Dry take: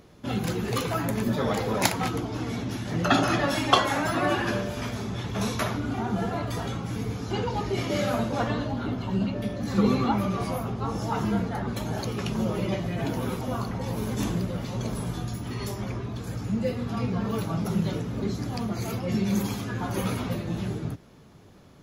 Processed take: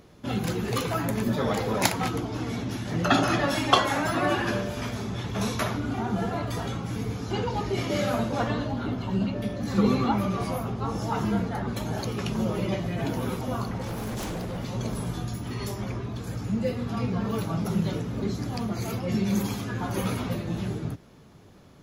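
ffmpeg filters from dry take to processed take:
ffmpeg -i in.wav -filter_complex "[0:a]asettb=1/sr,asplit=3[link_01][link_02][link_03];[link_01]atrim=end=13.764[link_04];[link_02]atrim=start=13.76:end=14.58,asetpts=PTS-STARTPTS,afade=type=in:duration=0.004:curve=qsin,afade=type=out:start_time=0.816:duration=0.004:curve=qsin,aeval=exprs='0.0447*(abs(mod(val(0)/0.0447+3,4)-2)-1)':channel_layout=same[link_05];[link_03]atrim=start=14.576[link_06];[link_04][link_05]acrossfade=duration=0.004:curve1=hsin:curve2=qsin[link_07];[link_07][link_06]acrossfade=duration=0.004:curve1=qsin:curve2=hsin" out.wav

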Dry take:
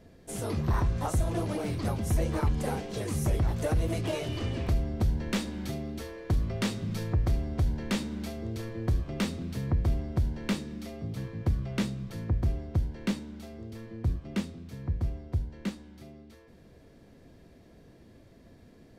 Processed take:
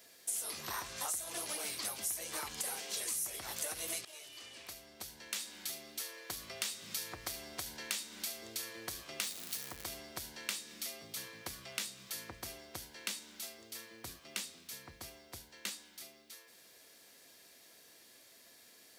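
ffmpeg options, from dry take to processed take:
ffmpeg -i in.wav -filter_complex "[0:a]asettb=1/sr,asplit=3[link_01][link_02][link_03];[link_01]atrim=end=9.224[link_04];[link_02]atrim=start=9.22:end=9.84,asetpts=PTS-STARTPTS,afade=type=in:duration=0.004:curve=qsin,afade=type=out:start_time=0.616:duration=0.004:curve=qsin,aeval=exprs='val(0)+0.5*0.0119*sgn(val(0))':channel_layout=same[link_05];[link_03]atrim=start=9.836[link_06];[link_04][link_05]acrossfade=duration=0.004:curve1=hsin:curve2=qsin[link_07];[link_07][link_06]acrossfade=duration=0.004:curve1=qsin:curve2=hsin,asplit=2[link_08][link_09];[link_08]atrim=end=4.05,asetpts=PTS-STARTPTS,afade=type=out:start_time=4.046:duration=0.004:curve=hsin:silence=0.0841395[link_10];[link_09]atrim=start=4.05,asetpts=PTS-STARTPTS,afade=type=in:duration=2.99:silence=0.0841395[link_11];[link_10][link_11]concat=n=2:v=0:a=1,aderivative,acompressor=threshold=-51dB:ratio=4,equalizer=frequency=100:width_type=o:width=2.8:gain=-6,volume=14.5dB" out.wav

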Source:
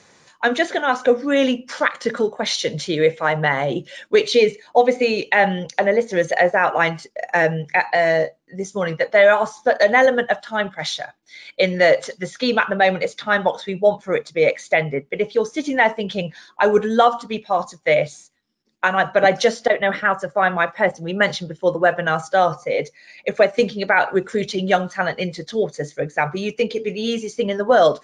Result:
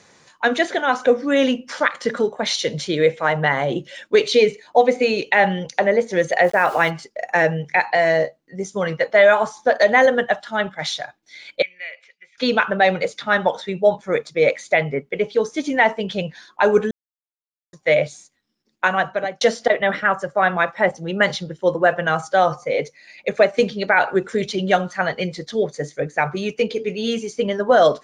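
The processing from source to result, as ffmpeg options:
ffmpeg -i in.wav -filter_complex "[0:a]asplit=3[link_01][link_02][link_03];[link_01]afade=type=out:start_time=6.43:duration=0.02[link_04];[link_02]aeval=exprs='val(0)*gte(abs(val(0)),0.0188)':channel_layout=same,afade=type=in:start_time=6.43:duration=0.02,afade=type=out:start_time=6.89:duration=0.02[link_05];[link_03]afade=type=in:start_time=6.89:duration=0.02[link_06];[link_04][link_05][link_06]amix=inputs=3:normalize=0,asettb=1/sr,asplit=3[link_07][link_08][link_09];[link_07]atrim=end=11.624[link_10];[link_08]atrim=start=11.62:end=12.38,asetpts=PTS-STARTPTS,afade=type=in:duration=0.004:curve=qsin,afade=type=out:start_time=0.756:duration=0.004:curve=qsin,bandpass=frequency=2400:width_type=q:width=11[link_11];[link_09]atrim=start=12.376[link_12];[link_10][link_11]acrossfade=duration=0.004:curve1=hsin:curve2=qsin[link_13];[link_13][link_12]acrossfade=duration=0.004:curve1=qsin:curve2=hsin,asplit=4[link_14][link_15][link_16][link_17];[link_14]atrim=end=16.91,asetpts=PTS-STARTPTS,afade=type=out:start_time=16.906:duration=0.004:curve=hsin[link_18];[link_15]atrim=start=16.91:end=17.73,asetpts=PTS-STARTPTS,volume=0[link_19];[link_16]atrim=start=17.73:end=19.41,asetpts=PTS-STARTPTS,afade=type=in:duration=0.004:curve=hsin,afade=type=out:start_time=1.17:duration=0.51[link_20];[link_17]atrim=start=19.41,asetpts=PTS-STARTPTS,afade=type=in:duration=0.004:curve=hsin[link_21];[link_18][link_19][link_20][link_21]concat=n=4:v=0:a=1" out.wav

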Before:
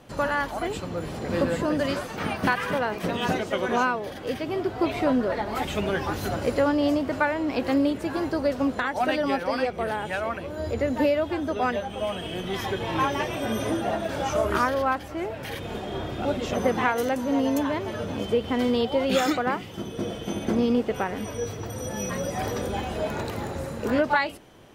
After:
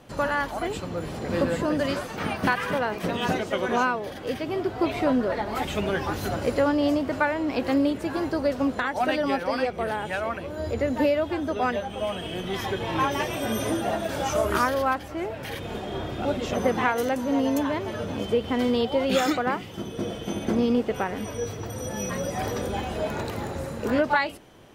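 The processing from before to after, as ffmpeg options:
ffmpeg -i in.wav -filter_complex "[0:a]asettb=1/sr,asplit=3[link_01][link_02][link_03];[link_01]atrim=end=13.114[link_04];[link_02]atrim=start=13.11:end=14.94,asetpts=PTS-STARTPTS,afade=type=in:duration=0.004:curve=qsin,afade=type=out:start_time=1.826:duration=0.004:curve=qsin,highshelf=frequency=6500:gain=8[link_05];[link_03]atrim=start=14.936[link_06];[link_04][link_05]acrossfade=duration=0.004:curve1=hsin:curve2=qsin[link_07];[link_07][link_06]acrossfade=duration=0.004:curve1=qsin:curve2=hsin" out.wav

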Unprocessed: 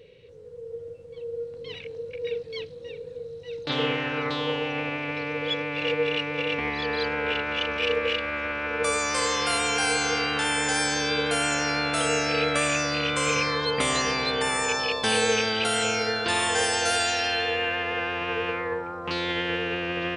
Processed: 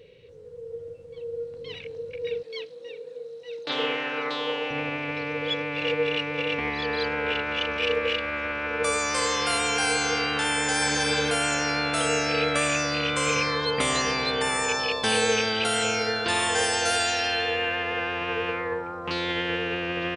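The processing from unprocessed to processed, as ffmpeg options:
ffmpeg -i in.wav -filter_complex "[0:a]asettb=1/sr,asplit=3[link_01][link_02][link_03];[link_01]atrim=end=2.434[link_04];[link_02]atrim=start=2.43:end=4.71,asetpts=PTS-STARTPTS,afade=type=in:duration=0.004:curve=qsin,afade=type=out:start_time=2.276:duration=0.004:curve=qsin,highpass=340[link_05];[link_03]atrim=start=4.706[link_06];[link_04][link_05]acrossfade=duration=0.004:curve1=hsin:curve2=qsin[link_07];[link_07][link_06]acrossfade=duration=0.004:curve1=qsin:curve2=hsin,asplit=2[link_08][link_09];[link_09]afade=type=in:start_time=10.55:duration=0.01,afade=type=out:start_time=11.04:duration=0.01,aecho=0:1:260|520|780:0.501187|0.125297|0.0313242[link_10];[link_08][link_10]amix=inputs=2:normalize=0" out.wav

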